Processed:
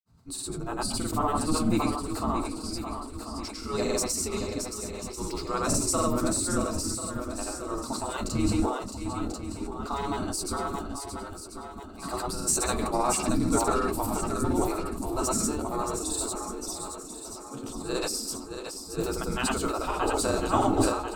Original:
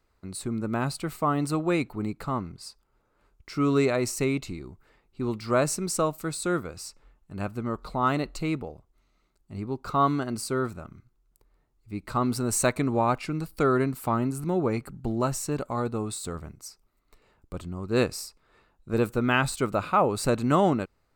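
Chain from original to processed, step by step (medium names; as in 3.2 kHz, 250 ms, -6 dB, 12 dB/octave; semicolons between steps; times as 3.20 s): ten-band graphic EQ 500 Hz -7 dB, 2 kHz -12 dB, 8 kHz +3 dB; simulated room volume 260 m³, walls furnished, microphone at 1.6 m; in parallel at -6.5 dB: saturation -17 dBFS, distortion -16 dB; on the sum: resonant low shelf 230 Hz +11.5 dB, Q 1.5; granulator, pitch spread up and down by 0 st; on a send: shuffle delay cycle 1040 ms, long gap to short 1.5:1, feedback 42%, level -8 dB; on the sum: spectral gate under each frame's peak -15 dB weak; decay stretcher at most 63 dB/s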